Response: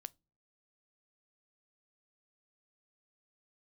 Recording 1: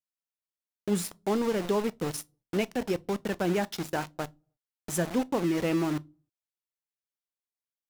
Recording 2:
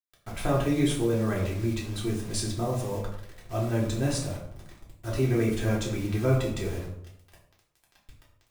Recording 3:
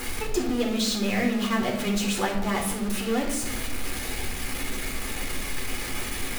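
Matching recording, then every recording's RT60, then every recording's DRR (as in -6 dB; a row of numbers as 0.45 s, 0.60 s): 1; no single decay rate, 0.70 s, 1.0 s; 17.5 dB, -4.5 dB, -1.5 dB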